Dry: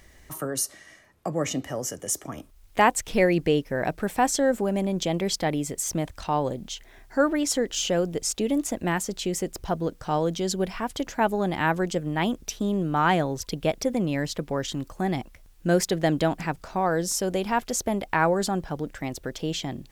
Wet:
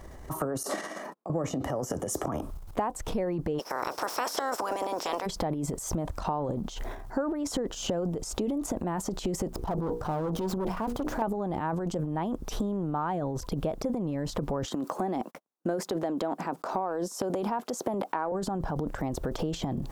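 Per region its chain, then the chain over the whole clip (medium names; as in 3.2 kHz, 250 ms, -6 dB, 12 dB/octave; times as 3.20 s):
0.63–1.30 s: brick-wall FIR high-pass 170 Hz + compressor with a negative ratio -40 dBFS + gate -55 dBFS, range -42 dB
3.58–5.25 s: spectral peaks clipped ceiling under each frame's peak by 28 dB + high-pass 380 Hz + peaking EQ 5.4 kHz +14.5 dB 0.27 oct
9.47–11.22 s: dead-time distortion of 0.05 ms + hum notches 60/120/180/240/300/360/420/480 Hz + valve stage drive 29 dB, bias 0.7
14.65–18.32 s: high-pass 220 Hz 24 dB/octave + gate -57 dBFS, range -41 dB
whole clip: transient shaper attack -1 dB, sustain +12 dB; resonant high shelf 1.5 kHz -10.5 dB, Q 1.5; compression 12:1, threshold -34 dBFS; trim +7 dB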